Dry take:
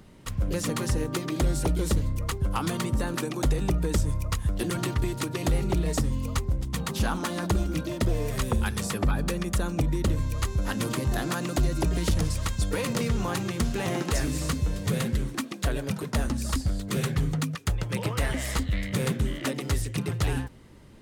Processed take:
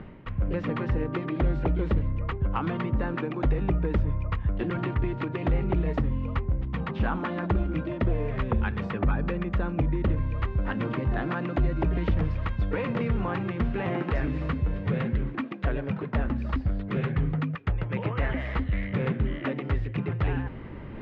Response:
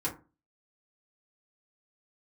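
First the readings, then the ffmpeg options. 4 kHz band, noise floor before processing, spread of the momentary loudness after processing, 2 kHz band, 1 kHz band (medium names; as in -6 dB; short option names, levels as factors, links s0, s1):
-11.5 dB, -39 dBFS, 4 LU, -0.5 dB, 0.0 dB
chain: -af "lowpass=f=2500:w=0.5412,lowpass=f=2500:w=1.3066,areverse,acompressor=mode=upward:threshold=0.0447:ratio=2.5,areverse"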